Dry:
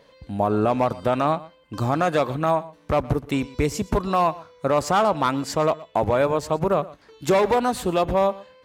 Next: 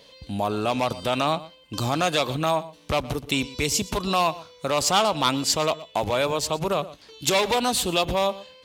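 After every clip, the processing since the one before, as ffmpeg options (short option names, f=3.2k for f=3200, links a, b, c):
-filter_complex "[0:a]acrossover=split=800[a][b];[a]alimiter=limit=-20dB:level=0:latency=1[c];[b]highshelf=f=2.3k:t=q:w=1.5:g=9[d];[c][d]amix=inputs=2:normalize=0"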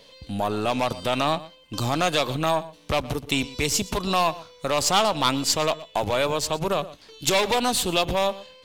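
-af "aeval=exprs='if(lt(val(0),0),0.708*val(0),val(0))':c=same,volume=1.5dB"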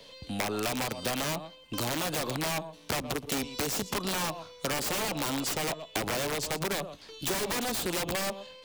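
-filter_complex "[0:a]aeval=exprs='(mod(7.94*val(0)+1,2)-1)/7.94':c=same,acrossover=split=150|360|1000[a][b][c][d];[a]acompressor=threshold=-46dB:ratio=4[e];[b]acompressor=threshold=-37dB:ratio=4[f];[c]acompressor=threshold=-35dB:ratio=4[g];[d]acompressor=threshold=-31dB:ratio=4[h];[e][f][g][h]amix=inputs=4:normalize=0"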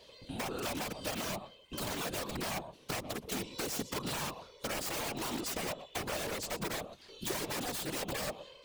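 -af "afftfilt=real='hypot(re,im)*cos(2*PI*random(0))':imag='hypot(re,im)*sin(2*PI*random(1))':win_size=512:overlap=0.75"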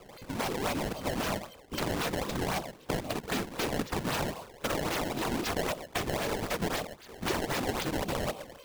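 -af "acrusher=samples=21:mix=1:aa=0.000001:lfo=1:lforange=33.6:lforate=3.8,volume=5.5dB"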